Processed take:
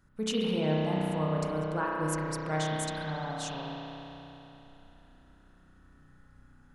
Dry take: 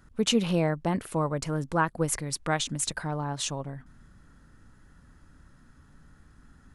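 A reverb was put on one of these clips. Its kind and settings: spring tank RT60 3.4 s, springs 32 ms, chirp 40 ms, DRR -4.5 dB; gain -9 dB

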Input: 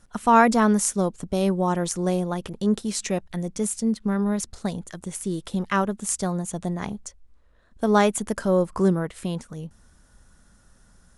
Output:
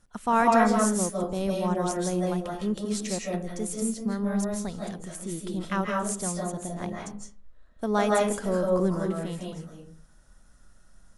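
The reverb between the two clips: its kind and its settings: digital reverb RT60 0.45 s, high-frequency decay 0.5×, pre-delay 0.12 s, DRR -2 dB; gain -7 dB

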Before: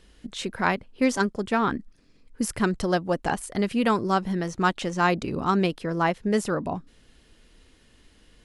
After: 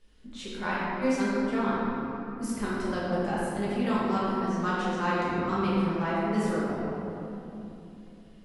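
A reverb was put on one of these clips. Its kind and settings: shoebox room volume 140 m³, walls hard, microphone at 1.3 m; gain -14.5 dB

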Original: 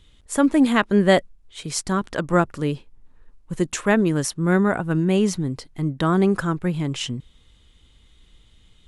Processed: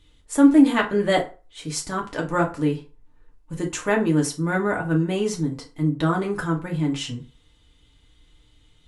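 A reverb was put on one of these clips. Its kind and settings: FDN reverb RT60 0.34 s, low-frequency decay 0.85×, high-frequency decay 0.7×, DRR -1 dB; gain -5 dB

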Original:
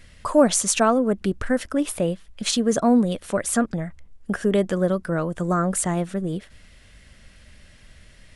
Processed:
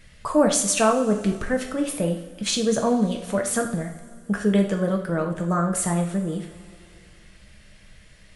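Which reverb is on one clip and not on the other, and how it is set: two-slope reverb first 0.54 s, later 2.8 s, from -18 dB, DRR 2 dB; gain -2.5 dB

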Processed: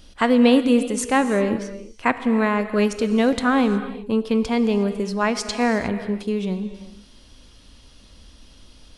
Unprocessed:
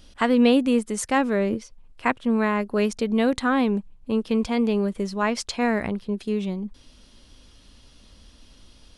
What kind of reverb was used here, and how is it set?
non-linear reverb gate 0.39 s flat, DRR 10 dB; gain +2.5 dB

